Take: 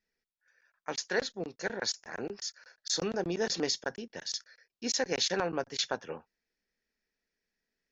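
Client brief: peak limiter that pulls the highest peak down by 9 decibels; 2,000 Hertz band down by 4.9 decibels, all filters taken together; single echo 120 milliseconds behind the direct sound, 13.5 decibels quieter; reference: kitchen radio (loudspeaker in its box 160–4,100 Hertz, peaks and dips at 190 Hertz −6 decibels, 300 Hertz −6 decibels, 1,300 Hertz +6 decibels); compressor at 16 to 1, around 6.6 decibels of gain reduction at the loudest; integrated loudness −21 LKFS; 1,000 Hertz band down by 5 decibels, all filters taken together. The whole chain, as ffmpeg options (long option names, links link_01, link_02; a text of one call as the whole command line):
ffmpeg -i in.wav -af "equalizer=frequency=1000:width_type=o:gain=-8,equalizer=frequency=2000:width_type=o:gain=-5,acompressor=threshold=-33dB:ratio=16,alimiter=level_in=5.5dB:limit=-24dB:level=0:latency=1,volume=-5.5dB,highpass=160,equalizer=frequency=190:width_type=q:width=4:gain=-6,equalizer=frequency=300:width_type=q:width=4:gain=-6,equalizer=frequency=1300:width_type=q:width=4:gain=6,lowpass=frequency=4100:width=0.5412,lowpass=frequency=4100:width=1.3066,aecho=1:1:120:0.211,volume=23.5dB" out.wav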